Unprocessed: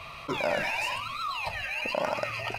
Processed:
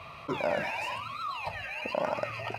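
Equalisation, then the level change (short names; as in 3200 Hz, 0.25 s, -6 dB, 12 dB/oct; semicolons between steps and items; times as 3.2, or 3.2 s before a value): HPF 71 Hz; high shelf 2100 Hz -9 dB; 0.0 dB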